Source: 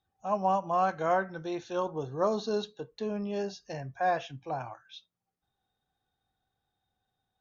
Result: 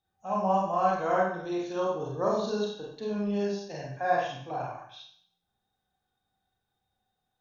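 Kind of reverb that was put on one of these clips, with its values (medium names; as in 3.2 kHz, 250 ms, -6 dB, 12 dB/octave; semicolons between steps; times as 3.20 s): Schroeder reverb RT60 0.6 s, combs from 31 ms, DRR -3.5 dB; trim -3.5 dB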